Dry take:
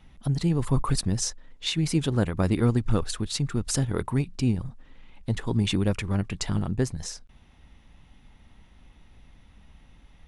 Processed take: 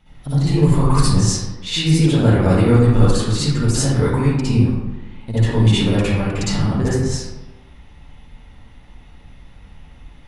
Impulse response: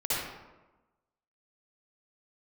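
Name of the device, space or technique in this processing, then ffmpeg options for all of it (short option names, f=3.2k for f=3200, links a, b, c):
bathroom: -filter_complex "[1:a]atrim=start_sample=2205[a];[0:a][a]afir=irnorm=-1:irlink=0,volume=1dB"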